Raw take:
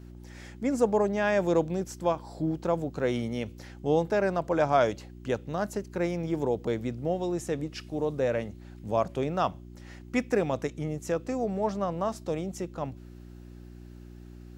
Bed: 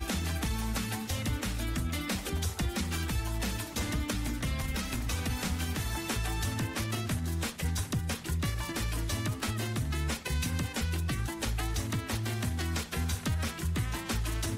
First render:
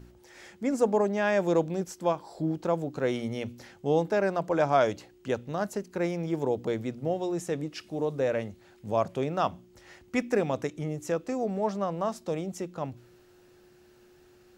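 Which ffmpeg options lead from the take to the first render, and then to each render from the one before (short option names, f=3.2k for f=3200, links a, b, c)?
-af "bandreject=f=60:t=h:w=4,bandreject=f=120:t=h:w=4,bandreject=f=180:t=h:w=4,bandreject=f=240:t=h:w=4,bandreject=f=300:t=h:w=4"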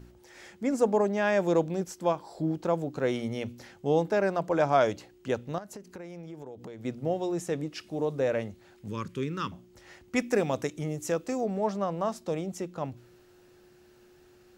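-filter_complex "[0:a]asettb=1/sr,asplit=3[a][b][c];[a]atrim=end=5.584[d];[b]atrim=start=5.58:end=6.85,asetpts=PTS-STARTPTS,afade=t=in:d=0.004:c=qsin,afade=t=out:st=1.266:d=0.004:c=qsin,acompressor=threshold=-39dB:ratio=8:attack=3.2:release=140:knee=1:detection=peak[e];[c]atrim=start=6.846[f];[d][e]acrossfade=d=0.004:c1=hsin:c2=qsin[g];[g][f]acrossfade=d=0.004:c1=qsin:c2=hsin,asettb=1/sr,asplit=3[h][i][j];[h]atrim=end=8.884[k];[i]atrim=start=8.88:end=9.52,asetpts=PTS-STARTPTS,afade=t=in:d=0.004:c=qsin,afade=t=out:st=0.636:d=0.004:c=qsin,asuperstop=centerf=690:order=4:qfactor=0.87[l];[j]atrim=start=9.516[m];[k][l]acrossfade=d=0.004:c1=hsin:c2=qsin[n];[n][m]acrossfade=d=0.004:c1=qsin:c2=hsin,asettb=1/sr,asplit=3[o][p][q];[o]atrim=end=10.164[r];[p]atrim=start=10.16:end=11.41,asetpts=PTS-STARTPTS,afade=t=in:d=0.004:c=qsin,afade=t=out:st=1.246:d=0.004:c=qsin,highshelf=f=4.2k:g=7[s];[q]atrim=start=11.406[t];[r][s]acrossfade=d=0.004:c1=hsin:c2=qsin[u];[u][t]acrossfade=d=0.004:c1=qsin:c2=hsin"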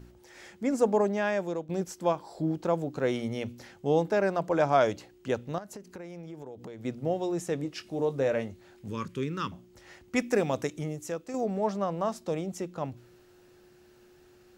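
-filter_complex "[0:a]asettb=1/sr,asplit=3[a][b][c];[a]atrim=end=7.624[d];[b]atrim=start=7.62:end=9.05,asetpts=PTS-STARTPTS,afade=t=in:d=0.004:c=qsin,afade=t=out:st=1.426:d=0.004:c=qsin,asplit=2[e][f];[f]adelay=22,volume=-11dB[g];[e][g]amix=inputs=2:normalize=0,atrim=end_sample=63063[h];[c]atrim=start=9.046[i];[d][h]acrossfade=d=0.004:c1=hsin:c2=qsin[j];[j][i]acrossfade=d=0.004:c1=qsin:c2=hsin,asplit=3[k][l][m];[k]atrim=end=1.69,asetpts=PTS-STARTPTS,afade=t=out:st=1.1:d=0.59:silence=0.158489[n];[l]atrim=start=1.69:end=11.34,asetpts=PTS-STARTPTS,afade=t=in:d=0.004:c=hsin:silence=0.158489,afade=t=out:st=9.1:d=0.55:c=qua:silence=0.446684[o];[m]atrim=start=11.34,asetpts=PTS-STARTPTS,afade=t=in:d=0.004:c=hsin:silence=0.446684[p];[n][o][p]concat=n=3:v=0:a=1"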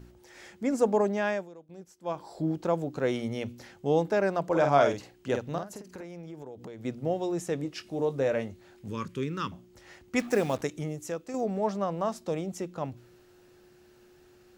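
-filter_complex "[0:a]asettb=1/sr,asplit=3[a][b][c];[a]atrim=end=4.484[d];[b]atrim=start=4.48:end=6.04,asetpts=PTS-STARTPTS,afade=t=in:d=0.004:c=qsin,afade=t=out:st=1.556:d=0.004:c=qsin,asplit=2[e][f];[f]adelay=49,volume=-5.5dB[g];[e][g]amix=inputs=2:normalize=0,atrim=end_sample=68796[h];[c]atrim=start=6.036[i];[d][h]acrossfade=d=0.004:c1=hsin:c2=qsin[j];[j][i]acrossfade=d=0.004:c1=qsin:c2=hsin,asettb=1/sr,asplit=3[k][l][m];[k]atrim=end=10.194[n];[l]atrim=start=10.19:end=10.62,asetpts=PTS-STARTPTS,afade=t=in:d=0.004:c=qsin,afade=t=out:st=0.426:d=0.004:c=qsin,acrusher=bits=6:mix=0:aa=0.5[o];[m]atrim=start=10.616[p];[n][o]acrossfade=d=0.004:c1=hsin:c2=qsin[q];[q][p]acrossfade=d=0.004:c1=qsin:c2=hsin,asplit=3[r][s][t];[r]atrim=end=1.49,asetpts=PTS-STARTPTS,afade=t=out:st=1.31:d=0.18:silence=0.16788[u];[s]atrim=start=1.49:end=2.03,asetpts=PTS-STARTPTS,volume=-15.5dB[v];[t]atrim=start=2.03,asetpts=PTS-STARTPTS,afade=t=in:d=0.18:silence=0.16788[w];[u][v][w]concat=n=3:v=0:a=1"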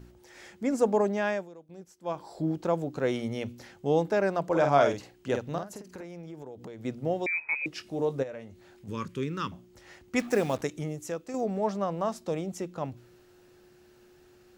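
-filter_complex "[0:a]asettb=1/sr,asplit=3[a][b][c];[a]atrim=end=7.264[d];[b]atrim=start=7.26:end=7.66,asetpts=PTS-STARTPTS,afade=t=in:d=0.004:c=qsin,afade=t=out:st=0.396:d=0.004:c=qsin,lowpass=f=2.3k:t=q:w=0.5098,lowpass=f=2.3k:t=q:w=0.6013,lowpass=f=2.3k:t=q:w=0.9,lowpass=f=2.3k:t=q:w=2.563,afreqshift=-2700[e];[c]atrim=start=7.656[f];[d][e]acrossfade=d=0.004:c1=hsin:c2=qsin[g];[g][f]acrossfade=d=0.004:c1=qsin:c2=hsin,asplit=3[h][i][j];[h]afade=t=out:st=8.22:d=0.02[k];[i]acompressor=threshold=-47dB:ratio=2:attack=3.2:release=140:knee=1:detection=peak,afade=t=in:st=8.22:d=0.02,afade=t=out:st=8.87:d=0.02[l];[j]afade=t=in:st=8.87:d=0.02[m];[k][l][m]amix=inputs=3:normalize=0"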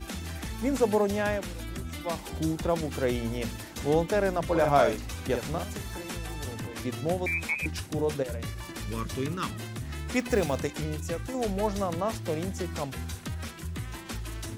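-filter_complex "[1:a]volume=-4.5dB[a];[0:a][a]amix=inputs=2:normalize=0"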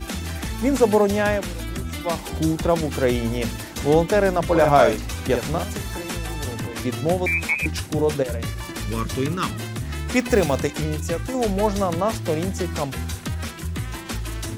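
-af "volume=7.5dB,alimiter=limit=-3dB:level=0:latency=1"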